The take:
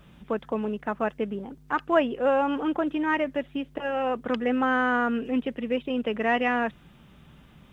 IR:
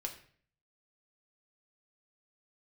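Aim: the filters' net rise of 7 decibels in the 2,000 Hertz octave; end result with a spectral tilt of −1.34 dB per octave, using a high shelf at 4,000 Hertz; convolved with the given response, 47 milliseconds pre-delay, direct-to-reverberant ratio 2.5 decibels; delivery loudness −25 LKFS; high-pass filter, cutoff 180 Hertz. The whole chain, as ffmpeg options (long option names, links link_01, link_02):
-filter_complex "[0:a]highpass=180,equalizer=frequency=2000:width_type=o:gain=8,highshelf=frequency=4000:gain=6,asplit=2[link_01][link_02];[1:a]atrim=start_sample=2205,adelay=47[link_03];[link_02][link_03]afir=irnorm=-1:irlink=0,volume=-2dB[link_04];[link_01][link_04]amix=inputs=2:normalize=0,volume=-2.5dB"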